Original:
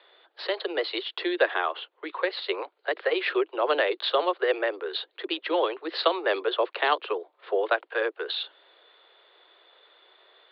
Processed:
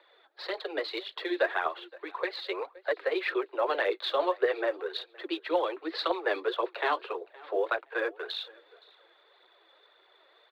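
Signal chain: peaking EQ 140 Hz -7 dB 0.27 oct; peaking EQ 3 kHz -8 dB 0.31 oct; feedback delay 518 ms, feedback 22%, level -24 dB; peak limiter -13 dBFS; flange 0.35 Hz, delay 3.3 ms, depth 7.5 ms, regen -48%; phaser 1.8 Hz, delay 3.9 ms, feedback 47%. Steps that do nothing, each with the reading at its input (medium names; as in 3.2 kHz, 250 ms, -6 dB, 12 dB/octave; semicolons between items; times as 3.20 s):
peaking EQ 140 Hz: input has nothing below 270 Hz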